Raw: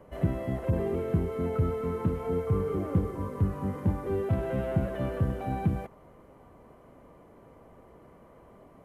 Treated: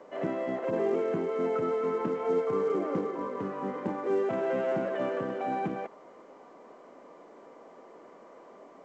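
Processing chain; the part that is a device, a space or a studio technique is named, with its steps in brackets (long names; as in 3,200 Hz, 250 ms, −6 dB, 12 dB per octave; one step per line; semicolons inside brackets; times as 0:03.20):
high-pass filter 230 Hz 12 dB per octave
telephone (band-pass filter 260–3,200 Hz; level +4.5 dB; A-law companding 128 kbit/s 16,000 Hz)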